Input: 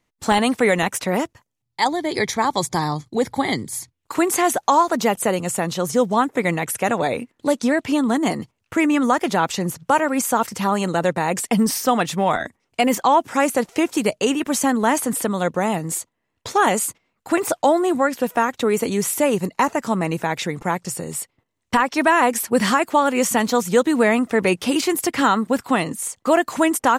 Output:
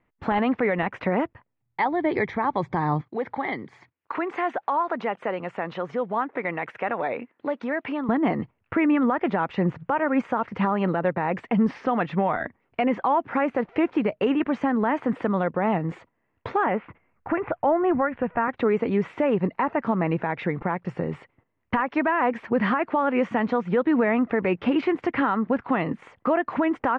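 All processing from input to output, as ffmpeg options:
-filter_complex "[0:a]asettb=1/sr,asplit=3[a][b][c];[a]atrim=end=3.014[d];[b]atrim=start=3.01:end=8.09,asetpts=PTS-STARTPTS,afade=t=in:d=0.004:c=qsin,afade=t=out:st=5.076:d=0.004:c=qsin,acompressor=threshold=-26dB:ratio=2:attack=3.2:release=140:knee=1:detection=peak,highpass=f=540:p=1[e];[c]atrim=start=8.086[f];[d][e]acrossfade=d=0.004:c1=hsin:c2=qsin[g];[g][f]acrossfade=d=0.004:c1=qsin:c2=hsin,asettb=1/sr,asplit=3[h][i][j];[h]atrim=end=16.644[k];[i]atrim=start=16.64:end=18.48,asetpts=PTS-STARTPTS,afade=t=in:d=0.004:c=qsin,afade=t=out:st=1.836:d=0.004:c=qsin,lowpass=f=2.7k:w=0.5412,lowpass=f=2.7k:w=1.3066,asubboost=boost=10.5:cutoff=120[l];[j]atrim=start=18.476[m];[k][l]acrossfade=d=0.004:c1=hsin:c2=qsin[n];[n][m]acrossfade=d=0.004:c1=qsin:c2=hsin,lowpass=f=2.3k:w=0.5412,lowpass=f=2.3k:w=1.3066,alimiter=limit=-16dB:level=0:latency=1:release=227,volume=2.5dB"

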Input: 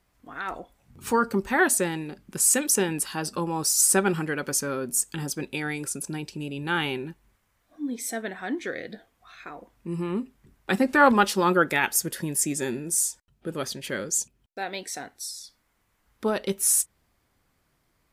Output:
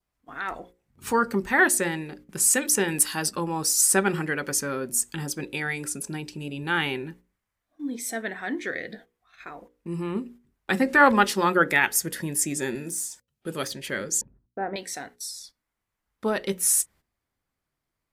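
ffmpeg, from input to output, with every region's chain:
-filter_complex "[0:a]asettb=1/sr,asplit=3[a][b][c];[a]atrim=end=2.884[d];[b]atrim=start=2.88:end=3.31,asetpts=PTS-STARTPTS,afade=t=in:d=0.004:c=qsin,afade=t=out:st=0.426:d=0.004:c=qsin,highshelf=f=4.4k:g=9.5,volume=10dB,asoftclip=hard,volume=-10dB[e];[c]atrim=start=3.306[f];[d][e]acrossfade=d=0.004:c1=hsin:c2=qsin[g];[g][f]acrossfade=d=0.004:c1=qsin:c2=hsin,asettb=1/sr,asplit=3[h][i][j];[h]atrim=end=12.754[k];[i]atrim=start=12.75:end=13.71,asetpts=PTS-STARTPTS,afade=t=in:d=0.004:c=qsin,afade=t=out:st=0.956:d=0.004:c=qsin,highpass=78,deesser=0.8,highshelf=f=2.7k:g=8.5[l];[j]atrim=start=13.706[m];[k][l]acrossfade=d=0.004:c1=hsin:c2=qsin[n];[n][m]acrossfade=d=0.004:c1=qsin:c2=hsin,asettb=1/sr,asplit=3[o][p][q];[o]atrim=end=14.214[r];[p]atrim=start=14.21:end=14.76,asetpts=PTS-STARTPTS,afade=t=in:d=0.004:c=qsin,afade=t=out:st=0.546:d=0.004:c=qsin,lowpass=f=1.5k:w=0.5412,lowpass=f=1.5k:w=1.3066,lowshelf=f=470:g=9.5[s];[q]atrim=start=14.756[t];[r][s]acrossfade=d=0.004:c1=hsin:c2=qsin[u];[u][t]acrossfade=d=0.004:c1=qsin:c2=hsin,agate=range=-13dB:threshold=-47dB:ratio=16:detection=peak,bandreject=f=60:t=h:w=6,bandreject=f=120:t=h:w=6,bandreject=f=180:t=h:w=6,bandreject=f=240:t=h:w=6,bandreject=f=300:t=h:w=6,bandreject=f=360:t=h:w=6,bandreject=f=420:t=h:w=6,bandreject=f=480:t=h:w=6,bandreject=f=540:t=h:w=6,adynamicequalizer=threshold=0.00631:dfrequency=1900:dqfactor=3.4:tfrequency=1900:tqfactor=3.4:attack=5:release=100:ratio=0.375:range=3:mode=boostabove:tftype=bell"

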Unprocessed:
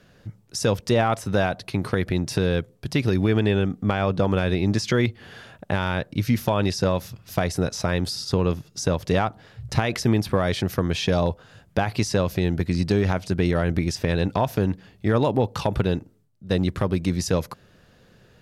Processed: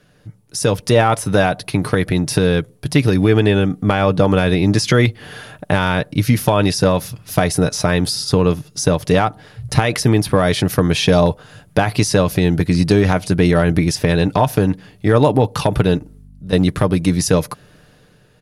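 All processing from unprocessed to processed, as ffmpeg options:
-filter_complex "[0:a]asettb=1/sr,asplit=3[a][b][c];[a]atrim=end=15.974[d];[b]atrim=start=15.97:end=16.53,asetpts=PTS-STARTPTS,afade=t=in:d=0.004:c=qsin,afade=t=out:st=0.556:d=0.004:c=qsin,acompressor=threshold=-31dB:ratio=6:attack=3.2:release=140:knee=1:detection=peak,aeval=exprs='val(0)+0.00398*(sin(2*PI*50*n/s)+sin(2*PI*2*50*n/s)/2+sin(2*PI*3*50*n/s)/3+sin(2*PI*4*50*n/s)/4+sin(2*PI*5*50*n/s)/5)':c=same[e];[c]atrim=start=16.526[f];[d][e]acrossfade=d=0.004:c1=hsin:c2=qsin[g];[g][f]acrossfade=d=0.004:c1=qsin:c2=hsin,equalizer=f=10k:t=o:w=0.2:g=13,aecho=1:1:6.7:0.35,dynaudnorm=f=140:g=9:m=11.5dB"

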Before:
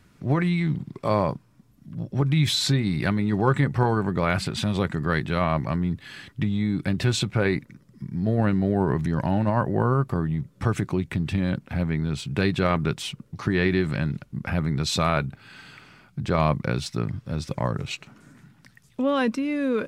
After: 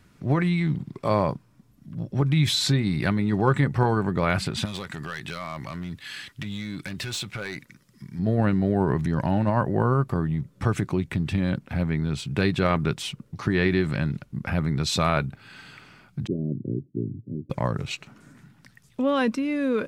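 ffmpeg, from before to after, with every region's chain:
-filter_complex "[0:a]asettb=1/sr,asplit=3[a][b][c];[a]atrim=end=4.654[d];[b]atrim=start=4.65:end=8.19,asetpts=PTS-STARTPTS,afade=t=in:d=0.004:c=qsin,afade=t=out:st=3.536:d=0.004:c=qsin,tiltshelf=f=1.1k:g=-7,acompressor=threshold=-28dB:ratio=3:attack=3.2:release=140:knee=1:detection=peak,asoftclip=type=hard:threshold=-26dB[e];[c]atrim=start=8.186[f];[d][e]acrossfade=d=0.004:c1=hsin:c2=qsin[g];[g][f]acrossfade=d=0.004:c1=qsin:c2=hsin,asettb=1/sr,asplit=3[h][i][j];[h]atrim=end=16.274[k];[i]atrim=start=16.27:end=17.5,asetpts=PTS-STARTPTS,afade=t=in:d=0.004:c=qsin,afade=t=out:st=1.226:d=0.004:c=qsin,asuperpass=centerf=210:order=12:qfactor=0.65,aecho=1:1:3.2:0.47,atrim=end_sample=54243[l];[j]atrim=start=17.496[m];[k][l]acrossfade=d=0.004:c1=hsin:c2=qsin[n];[n][m]acrossfade=d=0.004:c1=qsin:c2=hsin"

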